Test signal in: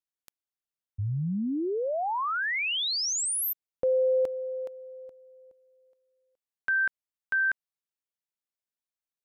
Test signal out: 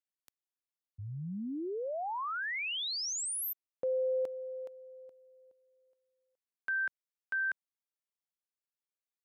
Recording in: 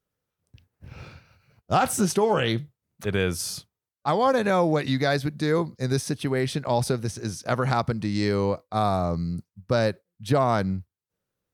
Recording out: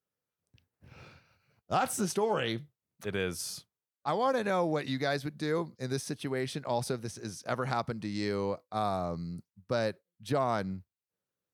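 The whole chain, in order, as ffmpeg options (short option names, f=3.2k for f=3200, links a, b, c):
-af "highpass=f=160:p=1,volume=-7dB"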